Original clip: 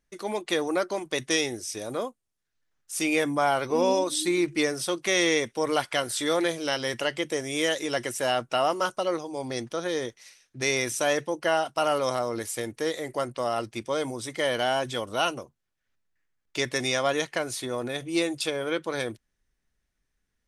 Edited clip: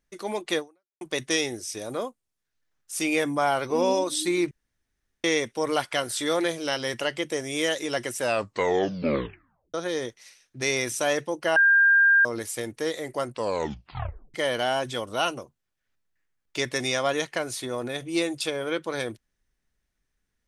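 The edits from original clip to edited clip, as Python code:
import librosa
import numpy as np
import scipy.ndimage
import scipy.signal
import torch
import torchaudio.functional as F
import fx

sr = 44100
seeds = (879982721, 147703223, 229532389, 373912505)

y = fx.edit(x, sr, fx.fade_out_span(start_s=0.58, length_s=0.43, curve='exp'),
    fx.room_tone_fill(start_s=4.51, length_s=0.73),
    fx.tape_stop(start_s=8.19, length_s=1.55),
    fx.bleep(start_s=11.56, length_s=0.69, hz=1600.0, db=-14.5),
    fx.tape_stop(start_s=13.32, length_s=1.02), tone=tone)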